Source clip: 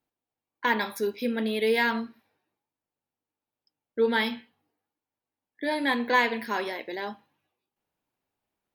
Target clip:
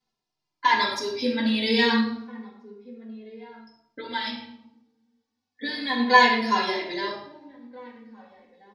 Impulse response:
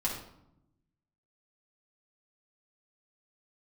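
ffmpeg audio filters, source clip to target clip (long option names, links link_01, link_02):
-filter_complex "[0:a]lowpass=6300,equalizer=frequency=4900:width_type=o:width=1.1:gain=14.5,asplit=3[link_01][link_02][link_03];[link_01]afade=type=out:start_time=4:duration=0.02[link_04];[link_02]acompressor=threshold=-27dB:ratio=6,afade=type=in:start_time=4:duration=0.02,afade=type=out:start_time=5.98:duration=0.02[link_05];[link_03]afade=type=in:start_time=5.98:duration=0.02[link_06];[link_04][link_05][link_06]amix=inputs=3:normalize=0,asplit=2[link_07][link_08];[link_08]adelay=1633,volume=-20dB,highshelf=frequency=4000:gain=-36.7[link_09];[link_07][link_09]amix=inputs=2:normalize=0[link_10];[1:a]atrim=start_sample=2205[link_11];[link_10][link_11]afir=irnorm=-1:irlink=0,asplit=2[link_12][link_13];[link_13]adelay=2.4,afreqshift=-0.32[link_14];[link_12][link_14]amix=inputs=2:normalize=1"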